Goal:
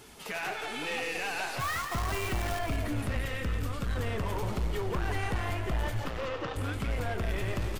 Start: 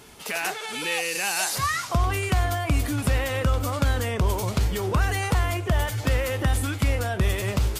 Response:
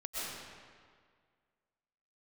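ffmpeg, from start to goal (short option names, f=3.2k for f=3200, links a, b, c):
-filter_complex "[0:a]asettb=1/sr,asplit=3[a][b][c];[a]atrim=end=3.174[d];[b]atrim=start=3.17:end=3.96,asetpts=PTS-STARTPTS,afade=t=in:d=0.004:c=qsin,afade=t=out:st=0.786:d=0.004:c=qsin,equalizer=f=710:w=0.93:g=-12[e];[c]atrim=start=3.956[f];[d][e]acrossfade=d=0.004:c1=hsin:c2=qsin[g];[g][f]acrossfade=d=0.004:c1=qsin:c2=hsin,acrossover=split=3400[h][i];[i]acompressor=threshold=-45dB:ratio=5[j];[h][j]amix=inputs=2:normalize=0,asettb=1/sr,asplit=3[k][l][m];[k]atrim=end=1.594[n];[l]atrim=start=1.59:end=2.59,asetpts=PTS-STARTPTS,afade=t=in:d=0.004:c=qsin,afade=t=out:st=0.996:d=0.004:c=qsin,acrusher=bits=6:dc=4:mix=0:aa=0.000001[o];[m]atrim=start=2.586[p];[n][o]acrossfade=d=0.004:c1=hsin:c2=qsin[q];[q][p]acrossfade=d=0.004:c1=qsin:c2=hsin,flanger=delay=2.2:depth=8.1:regen=-54:speed=0.84:shape=triangular,aeval=exprs='(tanh(28.2*val(0)+0.2)-tanh(0.2))/28.2':c=same,asettb=1/sr,asplit=3[r][s][t];[r]atrim=end=6.044[u];[s]atrim=start=6.04:end=6.56,asetpts=PTS-STARTPTS,afade=t=in:d=0.004:c=qsin,afade=t=out:st=0.516:d=0.004:c=qsin,highpass=f=150:w=0.5412,highpass=f=150:w=1.3066,equalizer=f=220:t=q:w=4:g=-10,equalizer=f=1.2k:t=q:w=4:g=7,equalizer=f=2k:t=q:w=4:g=-6,lowpass=f=6k:w=0.5412,lowpass=f=6k:w=1.3066[v];[t]atrim=start=6.556[w];[u][v]acrossfade=d=0.004:c1=hsin:c2=qsin[x];[x][w]acrossfade=d=0.004:c1=qsin:c2=hsin,asplit=5[y][z][aa][ab][ac];[z]adelay=171,afreqshift=-45,volume=-7dB[ad];[aa]adelay=342,afreqshift=-90,volume=-17.2dB[ae];[ab]adelay=513,afreqshift=-135,volume=-27.3dB[af];[ac]adelay=684,afreqshift=-180,volume=-37.5dB[ag];[y][ad][ae][af][ag]amix=inputs=5:normalize=0,asplit=2[ah][ai];[1:a]atrim=start_sample=2205[aj];[ai][aj]afir=irnorm=-1:irlink=0,volume=-14.5dB[ak];[ah][ak]amix=inputs=2:normalize=0"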